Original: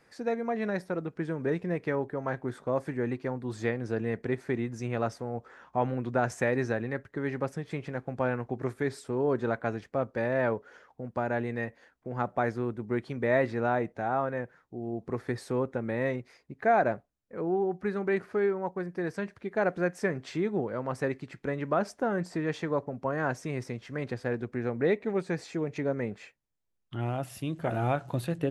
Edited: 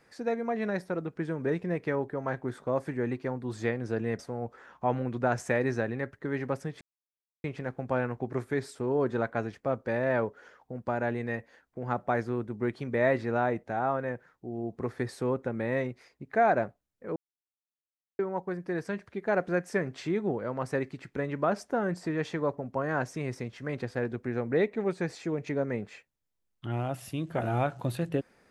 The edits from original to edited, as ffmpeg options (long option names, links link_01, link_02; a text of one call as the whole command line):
ffmpeg -i in.wav -filter_complex "[0:a]asplit=5[link_01][link_02][link_03][link_04][link_05];[link_01]atrim=end=4.192[link_06];[link_02]atrim=start=5.108:end=7.73,asetpts=PTS-STARTPTS,afade=type=out:start_time=2.618:duration=0.004:curve=hsin,apad=pad_dur=0.63[link_07];[link_03]atrim=start=7.73:end=17.45,asetpts=PTS-STARTPTS,afade=type=in:duration=0.004:curve=hsin,afade=type=out:start_time=9.716:duration=0.004:curve=hsin[link_08];[link_04]atrim=start=17.45:end=18.48,asetpts=PTS-STARTPTS,volume=0[link_09];[link_05]atrim=start=18.48,asetpts=PTS-STARTPTS,afade=type=in:duration=0.004:curve=hsin[link_10];[link_07][link_08][link_09][link_10]concat=n=4:v=0:a=1[link_11];[link_06][link_11]acrossfade=duration=0.004:curve1=hsin:curve2=hsin" out.wav